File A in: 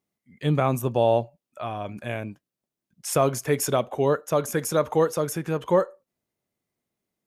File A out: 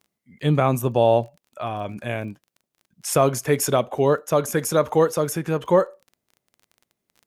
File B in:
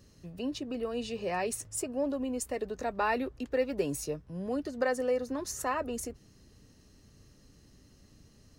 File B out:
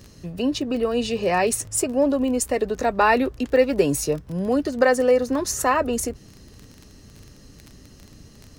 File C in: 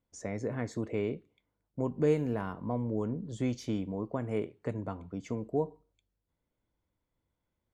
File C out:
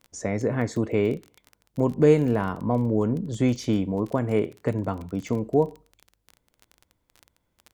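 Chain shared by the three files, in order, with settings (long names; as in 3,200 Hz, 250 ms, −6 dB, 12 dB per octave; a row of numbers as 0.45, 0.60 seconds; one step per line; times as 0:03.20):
surface crackle 23 per second −42 dBFS
normalise the peak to −6 dBFS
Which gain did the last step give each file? +3.0, +12.0, +9.5 decibels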